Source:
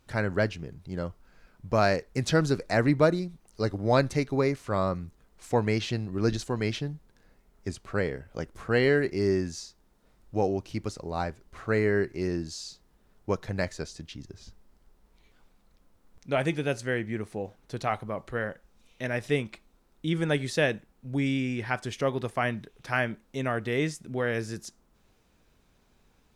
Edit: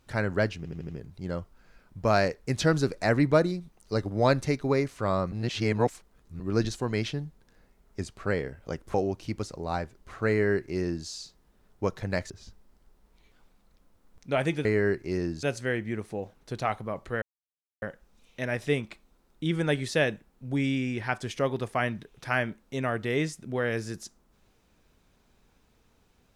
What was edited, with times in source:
0:00.57: stutter 0.08 s, 5 plays
0:05.00–0:06.08: reverse
0:08.62–0:10.40: remove
0:11.75–0:12.53: duplicate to 0:16.65
0:13.76–0:14.30: remove
0:18.44: splice in silence 0.60 s

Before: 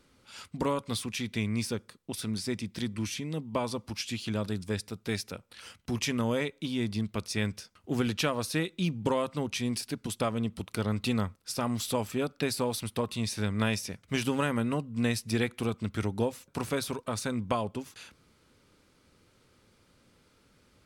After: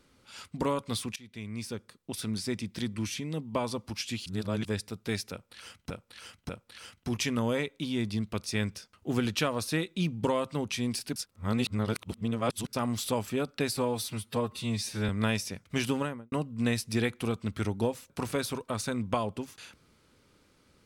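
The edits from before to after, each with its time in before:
0:01.16–0:02.18: fade in, from −21 dB
0:04.26–0:04.65: reverse
0:05.31–0:05.90: repeat, 3 plays
0:09.98–0:11.55: reverse
0:12.59–0:13.47: time-stretch 1.5×
0:14.27–0:14.70: fade out and dull

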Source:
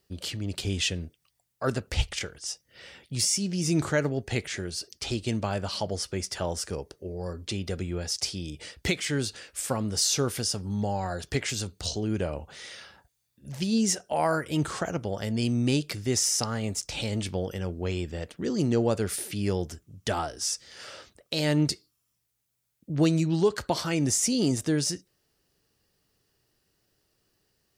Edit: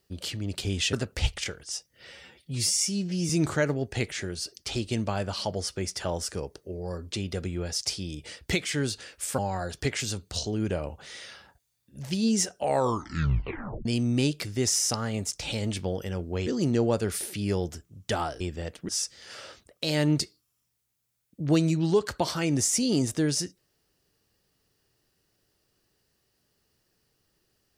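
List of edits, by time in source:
0:00.93–0:01.68: remove
0:02.86–0:03.65: time-stretch 1.5×
0:09.74–0:10.88: remove
0:14.07: tape stop 1.28 s
0:17.96–0:18.44: move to 0:20.38

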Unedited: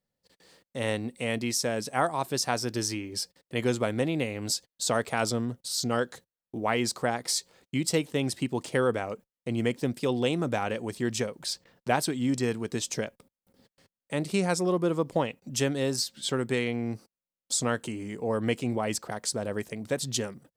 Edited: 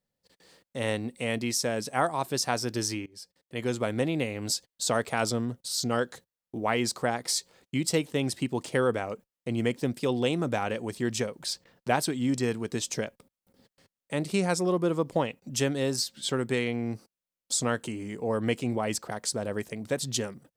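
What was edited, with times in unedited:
0:03.06–0:03.98: fade in, from −21 dB

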